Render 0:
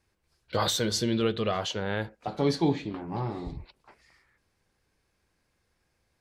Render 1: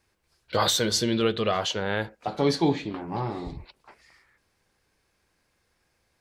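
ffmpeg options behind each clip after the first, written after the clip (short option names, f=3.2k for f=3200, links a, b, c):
-af "lowshelf=f=300:g=-5,volume=4.5dB"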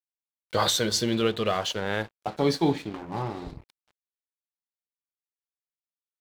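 -af "aeval=exprs='sgn(val(0))*max(abs(val(0))-0.0075,0)':c=same"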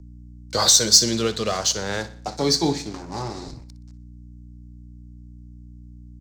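-filter_complex "[0:a]aecho=1:1:61|122|183|244:0.158|0.0729|0.0335|0.0154,aeval=exprs='val(0)+0.00794*(sin(2*PI*60*n/s)+sin(2*PI*2*60*n/s)/2+sin(2*PI*3*60*n/s)/3+sin(2*PI*4*60*n/s)/4+sin(2*PI*5*60*n/s)/5)':c=same,acrossover=split=130|600|7100[a][b][c][d];[c]aexciter=amount=5.1:drive=9.9:freq=4.7k[e];[a][b][e][d]amix=inputs=4:normalize=0,volume=1dB"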